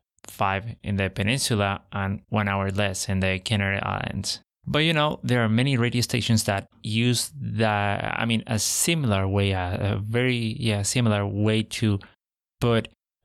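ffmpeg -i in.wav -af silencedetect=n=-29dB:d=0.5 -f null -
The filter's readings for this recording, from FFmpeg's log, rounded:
silence_start: 12.01
silence_end: 12.62 | silence_duration: 0.60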